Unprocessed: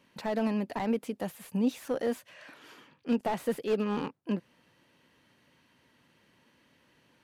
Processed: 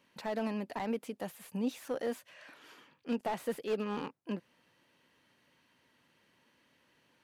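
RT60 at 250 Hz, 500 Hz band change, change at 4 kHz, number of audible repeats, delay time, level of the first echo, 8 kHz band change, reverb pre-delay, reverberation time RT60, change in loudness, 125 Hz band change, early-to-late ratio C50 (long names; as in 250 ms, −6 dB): no reverb audible, −4.5 dB, −3.0 dB, no echo audible, no echo audible, no echo audible, −3.0 dB, no reverb audible, no reverb audible, −5.5 dB, −7.0 dB, no reverb audible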